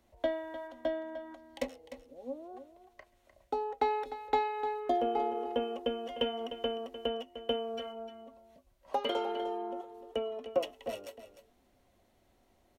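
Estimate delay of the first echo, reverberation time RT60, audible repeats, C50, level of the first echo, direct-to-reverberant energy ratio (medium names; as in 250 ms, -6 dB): 302 ms, no reverb, 1, no reverb, -12.0 dB, no reverb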